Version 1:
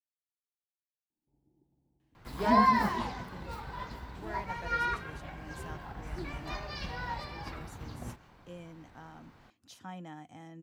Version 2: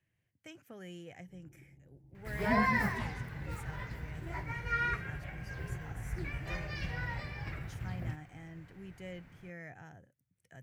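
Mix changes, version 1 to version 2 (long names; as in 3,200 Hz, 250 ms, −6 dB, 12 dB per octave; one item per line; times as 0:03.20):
speech: entry −2.00 s
first sound +11.5 dB
master: add octave-band graphic EQ 125/250/1,000/2,000/4,000 Hz +9/−7/−10/+8/−9 dB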